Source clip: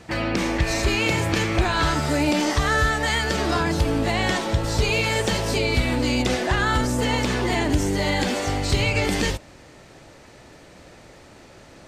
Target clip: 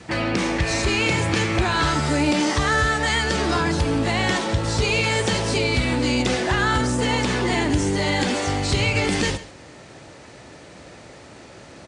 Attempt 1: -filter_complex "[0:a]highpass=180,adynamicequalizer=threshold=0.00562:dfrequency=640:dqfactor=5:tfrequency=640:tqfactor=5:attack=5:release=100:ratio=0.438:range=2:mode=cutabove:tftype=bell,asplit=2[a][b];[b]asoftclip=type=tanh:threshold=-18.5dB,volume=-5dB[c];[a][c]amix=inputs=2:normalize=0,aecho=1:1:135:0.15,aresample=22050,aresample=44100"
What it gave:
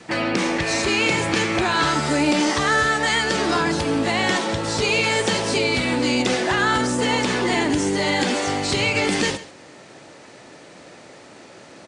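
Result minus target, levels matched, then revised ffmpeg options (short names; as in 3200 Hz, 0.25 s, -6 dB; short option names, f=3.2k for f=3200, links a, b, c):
125 Hz band -6.5 dB; soft clip: distortion -10 dB
-filter_complex "[0:a]highpass=66,adynamicequalizer=threshold=0.00562:dfrequency=640:dqfactor=5:tfrequency=640:tqfactor=5:attack=5:release=100:ratio=0.438:range=2:mode=cutabove:tftype=bell,asplit=2[a][b];[b]asoftclip=type=tanh:threshold=-29.5dB,volume=-5dB[c];[a][c]amix=inputs=2:normalize=0,aecho=1:1:135:0.15,aresample=22050,aresample=44100"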